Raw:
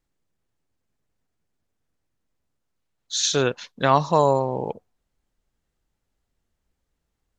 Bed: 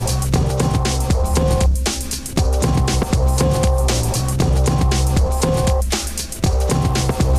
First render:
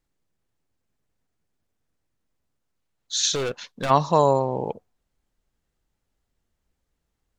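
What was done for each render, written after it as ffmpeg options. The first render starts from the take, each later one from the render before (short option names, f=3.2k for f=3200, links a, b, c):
-filter_complex "[0:a]asplit=3[a][b][c];[a]afade=t=out:st=3.34:d=0.02[d];[b]volume=23dB,asoftclip=hard,volume=-23dB,afade=t=in:st=3.34:d=0.02,afade=t=out:st=3.89:d=0.02[e];[c]afade=t=in:st=3.89:d=0.02[f];[d][e][f]amix=inputs=3:normalize=0"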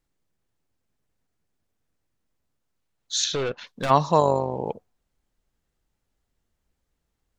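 -filter_complex "[0:a]asettb=1/sr,asplit=3[a][b][c];[a]atrim=end=3.244[d];[b]atrim=start=3.24:end=3.67,asetpts=PTS-STARTPTS,afade=t=in:d=0.004:c=qsin,afade=t=out:st=0.426:d=0.004:c=qsin,lowpass=3.7k[e];[c]atrim=start=3.666[f];[d][e]acrossfade=d=0.004:c1=hsin:c2=qsin[g];[g][f]acrossfade=d=0.004:c1=qsin:c2=hsin,asettb=1/sr,asplit=3[h][i][j];[h]atrim=end=4.204[k];[i]atrim=start=4.2:end=4.66,asetpts=PTS-STARTPTS,afade=t=in:d=0.004:c=qsin,afade=t=out:st=0.456:d=0.004:c=qsin,tremolo=f=50:d=0.519[l];[j]atrim=start=4.656[m];[k][l]acrossfade=d=0.004:c1=hsin:c2=qsin[n];[n][m]acrossfade=d=0.004:c1=qsin:c2=hsin"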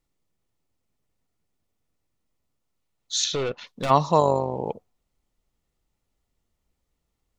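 -af "bandreject=f=1.6k:w=6.5"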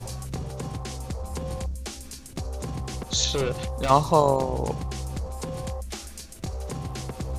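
-filter_complex "[1:a]volume=-16dB[a];[0:a][a]amix=inputs=2:normalize=0"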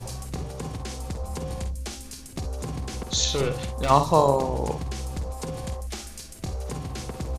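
-af "aecho=1:1:50|64:0.316|0.188"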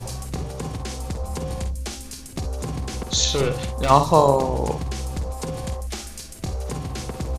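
-af "volume=3.5dB,alimiter=limit=-1dB:level=0:latency=1"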